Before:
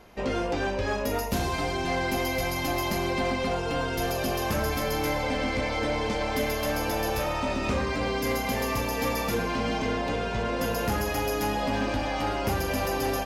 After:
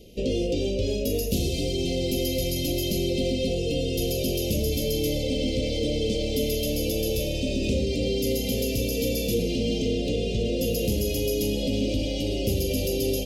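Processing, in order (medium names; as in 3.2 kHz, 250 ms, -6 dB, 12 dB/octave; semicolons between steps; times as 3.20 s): elliptic band-stop 510–2900 Hz, stop band 60 dB; in parallel at +1 dB: peak limiter -26 dBFS, peak gain reduction 8 dB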